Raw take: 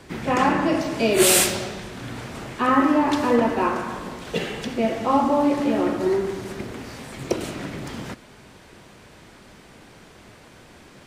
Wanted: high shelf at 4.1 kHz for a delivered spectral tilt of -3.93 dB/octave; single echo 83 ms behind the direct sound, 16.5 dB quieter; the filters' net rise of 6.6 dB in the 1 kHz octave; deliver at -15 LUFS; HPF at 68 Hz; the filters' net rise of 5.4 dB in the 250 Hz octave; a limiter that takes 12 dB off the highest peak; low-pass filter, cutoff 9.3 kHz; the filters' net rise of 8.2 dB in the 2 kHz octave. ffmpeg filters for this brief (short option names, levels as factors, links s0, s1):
-af "highpass=68,lowpass=9300,equalizer=f=250:t=o:g=6,equalizer=f=1000:t=o:g=5.5,equalizer=f=2000:t=o:g=7,highshelf=f=4100:g=7,alimiter=limit=0.251:level=0:latency=1,aecho=1:1:83:0.15,volume=2.37"